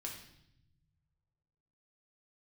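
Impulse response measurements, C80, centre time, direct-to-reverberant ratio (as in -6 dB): 8.5 dB, 31 ms, -1.0 dB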